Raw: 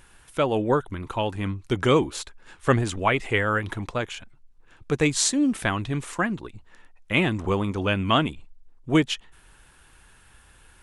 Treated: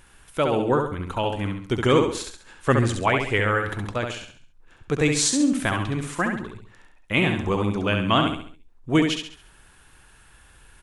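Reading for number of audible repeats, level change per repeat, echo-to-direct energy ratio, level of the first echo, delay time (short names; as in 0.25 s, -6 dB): 4, -8.0 dB, -4.0 dB, -5.0 dB, 68 ms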